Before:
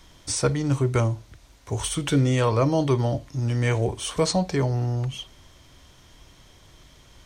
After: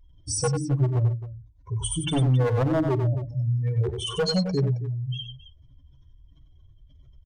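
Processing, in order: spectral contrast raised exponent 2.9; wavefolder -17.5 dBFS; notches 50/100/150/200/250/300/350 Hz; on a send: tapped delay 45/94/269 ms -19.5/-7/-15.5 dB

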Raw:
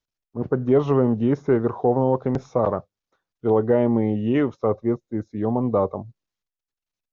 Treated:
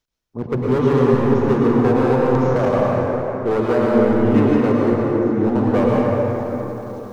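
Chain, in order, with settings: reverse; upward compressor, threshold -36 dBFS; reverse; overloaded stage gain 17.5 dB; plate-style reverb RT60 4.2 s, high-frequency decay 0.45×, pre-delay 90 ms, DRR -4.5 dB; gain +1.5 dB

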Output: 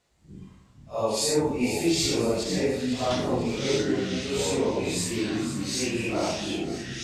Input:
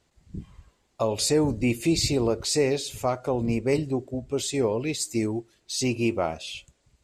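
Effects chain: phase scrambler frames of 0.2 s; low shelf 150 Hz -11 dB; echoes that change speed 0.37 s, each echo -5 st, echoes 3, each echo -6 dB; 2.43–3.11 tape spacing loss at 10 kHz 20 dB; split-band echo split 1400 Hz, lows 95 ms, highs 0.496 s, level -10 dB

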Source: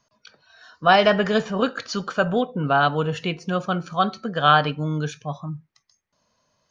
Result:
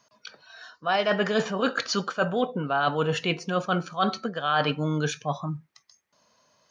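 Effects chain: HPF 250 Hz 6 dB/oct; reverse; compressor 8:1, threshold -26 dBFS, peak gain reduction 15.5 dB; reverse; gain +5 dB

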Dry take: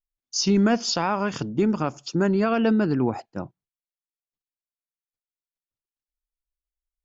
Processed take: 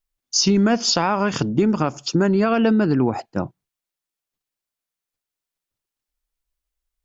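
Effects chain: compressor 3:1, threshold -24 dBFS, peak gain reduction 6.5 dB; gain +8.5 dB

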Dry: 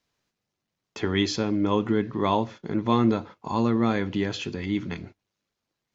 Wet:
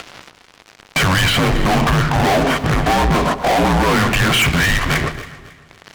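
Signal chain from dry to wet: low shelf 200 Hz -10.5 dB; upward compressor, threshold -44 dBFS; limiter -22.5 dBFS, peak gain reduction 11.5 dB; compressor 2:1, threshold -34 dBFS, peak gain reduction 4.5 dB; mistuned SSB -280 Hz 430–3200 Hz; fuzz box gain 51 dB, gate -60 dBFS; on a send: echo with dull and thin repeats by turns 0.137 s, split 1400 Hz, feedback 55%, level -10.5 dB; on the sum: warbling echo 0.188 s, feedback 55%, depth 60 cents, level -22 dB

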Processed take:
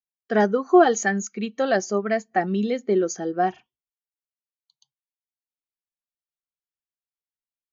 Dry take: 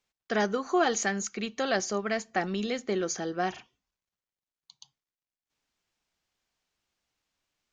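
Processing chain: spectral expander 1.5:1; gain +9 dB

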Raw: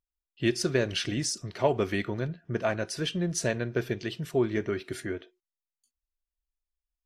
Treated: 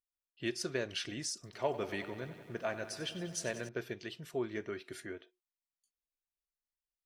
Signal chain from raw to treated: low shelf 250 Hz -9 dB; 1.34–3.69 lo-fi delay 94 ms, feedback 80%, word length 9-bit, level -13.5 dB; gain -7.5 dB

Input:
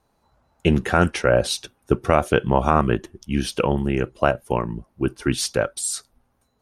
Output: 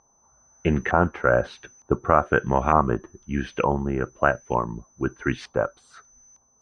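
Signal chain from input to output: whine 6100 Hz -27 dBFS; LFO low-pass saw up 1.1 Hz 970–2100 Hz; gain -4 dB

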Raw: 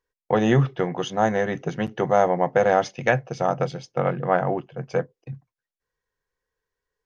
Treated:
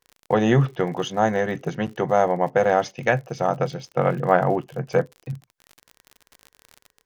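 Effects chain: crackle 54/s -36 dBFS; vocal rider 2 s

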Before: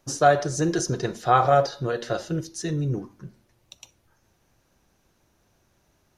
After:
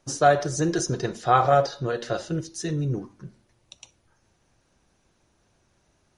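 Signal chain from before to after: MP3 48 kbps 44100 Hz

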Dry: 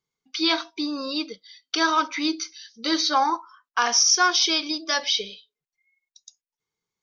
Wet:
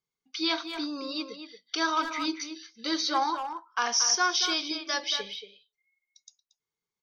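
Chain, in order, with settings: 1.31–2.34 notches 60/120/180/240/300 Hz; speakerphone echo 0.23 s, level -7 dB; gain -6 dB

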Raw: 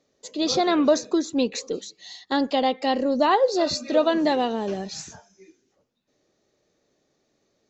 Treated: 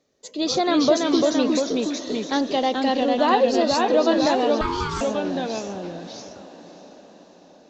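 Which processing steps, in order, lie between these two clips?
echoes that change speed 0.293 s, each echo -1 st, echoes 2; diffused feedback echo 0.622 s, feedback 54%, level -16 dB; 4.61–5.01 ring modulator 650 Hz

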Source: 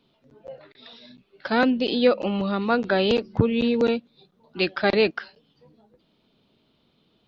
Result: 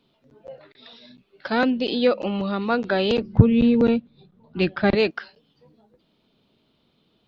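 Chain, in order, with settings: 3.17–4.95 tone controls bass +12 dB, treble -10 dB; in parallel at -4 dB: soft clip -8 dBFS, distortion -13 dB; on the sum: gain -4.5 dB

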